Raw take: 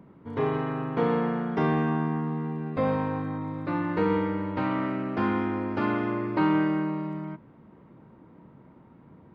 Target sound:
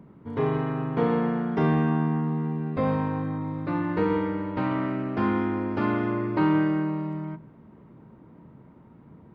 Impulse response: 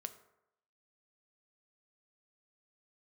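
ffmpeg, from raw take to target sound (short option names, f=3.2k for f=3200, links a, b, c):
-filter_complex "[0:a]asplit=2[a][b];[1:a]atrim=start_sample=2205,lowshelf=f=320:g=8[c];[b][c]afir=irnorm=-1:irlink=0,volume=2dB[d];[a][d]amix=inputs=2:normalize=0,volume=-6dB"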